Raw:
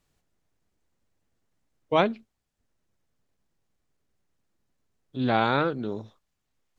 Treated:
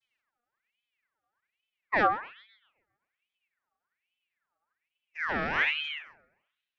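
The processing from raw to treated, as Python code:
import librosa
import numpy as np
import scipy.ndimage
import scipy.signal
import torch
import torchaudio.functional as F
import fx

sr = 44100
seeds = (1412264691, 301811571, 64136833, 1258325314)

y = fx.vocoder_glide(x, sr, note=59, semitones=-10)
y = fx.notch(y, sr, hz=4700.0, q=21.0)
y = fx.echo_banded(y, sr, ms=132, feedback_pct=48, hz=1000.0, wet_db=-13)
y = fx.ring_lfo(y, sr, carrier_hz=1900.0, swing_pct=50, hz=1.2)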